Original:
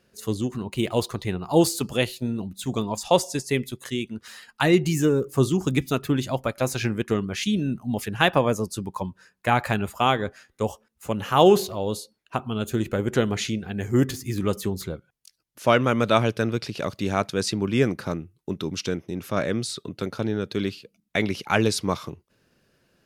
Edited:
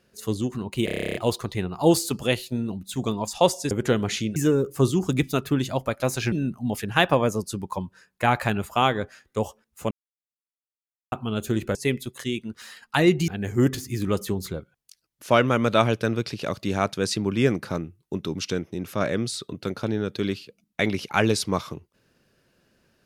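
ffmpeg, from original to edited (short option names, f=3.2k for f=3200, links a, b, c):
-filter_complex "[0:a]asplit=18[a][b][c][d][e][f][g][h][i][j][k][l][m][n][o][p][q][r];[a]atrim=end=0.882[s];[b]atrim=start=0.848:end=0.882[t];[c]atrim=start=0.848:end=0.882[u];[d]atrim=start=0.848:end=0.882[v];[e]atrim=start=0.848:end=0.882[w];[f]atrim=start=0.848:end=0.882[x];[g]atrim=start=0.848:end=0.882[y];[h]atrim=start=0.848:end=0.882[z];[i]atrim=start=0.848:end=0.882[aa];[j]atrim=start=0.848:end=0.882[ab];[k]atrim=start=0.848:end=3.412[ac];[l]atrim=start=12.988:end=13.642[ad];[m]atrim=start=4.938:end=6.902[ae];[n]atrim=start=7.558:end=11.15,asetpts=PTS-STARTPTS,afade=t=out:st=3.588:d=0.004:c=hsin[af];[o]atrim=start=11.15:end=12.36,asetpts=PTS-STARTPTS,volume=0[ag];[p]atrim=start=12.36:end=12.992,asetpts=PTS-STARTPTS,afade=t=in:d=0.004:c=hsin[ah];[q]atrim=start=3.408:end=4.942[ai];[r]atrim=start=13.638[aj];[s][t]acrossfade=d=0.004:c1=hsin:c2=hsin[ak];[ak][u]acrossfade=d=0.004:c1=hsin:c2=hsin[al];[al][v]acrossfade=d=0.004:c1=hsin:c2=hsin[am];[am][w]acrossfade=d=0.004:c1=hsin:c2=hsin[an];[an][x]acrossfade=d=0.004:c1=hsin:c2=hsin[ao];[ao][y]acrossfade=d=0.004:c1=hsin:c2=hsin[ap];[ap][z]acrossfade=d=0.004:c1=hsin:c2=hsin[aq];[aq][aa]acrossfade=d=0.004:c1=hsin:c2=hsin[ar];[ar][ab]acrossfade=d=0.004:c1=hsin:c2=hsin[as];[as][ac]acrossfade=d=0.004:c1=hsin:c2=hsin[at];[at][ad]acrossfade=d=0.004:c1=hsin:c2=hsin[au];[au][ae]acrossfade=d=0.004:c1=hsin:c2=hsin[av];[af][ag][ah]concat=n=3:v=0:a=1[aw];[av][aw]acrossfade=d=0.004:c1=hsin:c2=hsin[ax];[ax][ai]acrossfade=d=0.004:c1=hsin:c2=hsin[ay];[ay][aj]acrossfade=d=0.004:c1=hsin:c2=hsin"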